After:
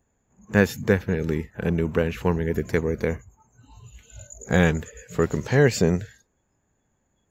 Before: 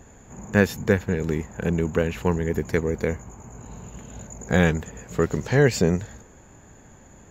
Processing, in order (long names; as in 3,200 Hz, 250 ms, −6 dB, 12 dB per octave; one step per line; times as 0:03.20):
noise reduction from a noise print of the clip's start 22 dB